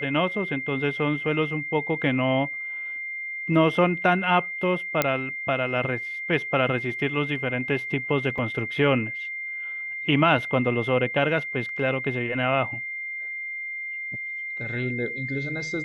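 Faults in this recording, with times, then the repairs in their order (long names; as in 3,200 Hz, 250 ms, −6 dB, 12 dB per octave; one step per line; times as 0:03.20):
whistle 2,100 Hz −30 dBFS
0:05.02: click −5 dBFS
0:08.38: drop-out 4.2 ms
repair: click removal
notch filter 2,100 Hz, Q 30
repair the gap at 0:08.38, 4.2 ms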